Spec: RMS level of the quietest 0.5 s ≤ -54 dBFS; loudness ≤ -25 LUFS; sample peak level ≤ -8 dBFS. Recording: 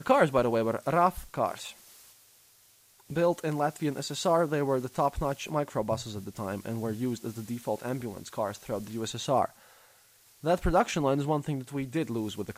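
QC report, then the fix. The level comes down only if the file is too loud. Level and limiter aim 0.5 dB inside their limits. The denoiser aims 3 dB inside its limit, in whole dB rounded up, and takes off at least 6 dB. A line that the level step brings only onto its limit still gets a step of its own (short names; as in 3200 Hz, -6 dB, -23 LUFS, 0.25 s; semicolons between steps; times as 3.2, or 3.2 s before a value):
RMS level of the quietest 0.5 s -61 dBFS: OK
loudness -30.0 LUFS: OK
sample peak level -10.5 dBFS: OK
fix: none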